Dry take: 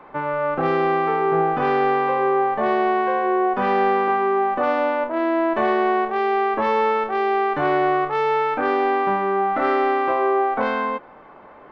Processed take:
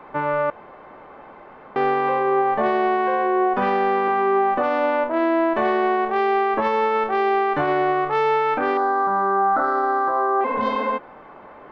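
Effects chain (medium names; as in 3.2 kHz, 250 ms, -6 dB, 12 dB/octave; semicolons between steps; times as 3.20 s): 8.77–10.41 s: FFT filter 390 Hz 0 dB, 1.5 kHz +9 dB, 2.6 kHz -28 dB, 4 kHz -1 dB; 10.47–10.90 s: spectral replace 230–2900 Hz after; peak limiter -14 dBFS, peak gain reduction 9.5 dB; 0.50–1.76 s: room tone; trim +2 dB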